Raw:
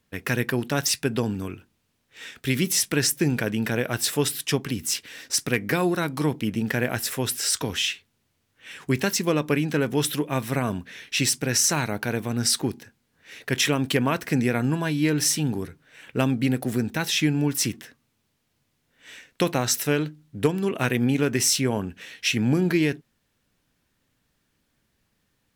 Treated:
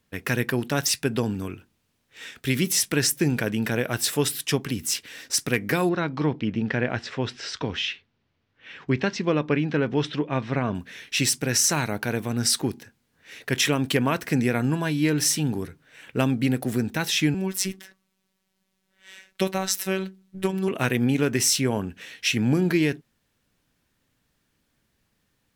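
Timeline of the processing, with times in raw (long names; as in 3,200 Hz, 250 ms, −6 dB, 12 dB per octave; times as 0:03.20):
0:05.89–0:10.75: Bessel low-pass filter 3,400 Hz, order 6
0:17.34–0:20.68: phases set to zero 190 Hz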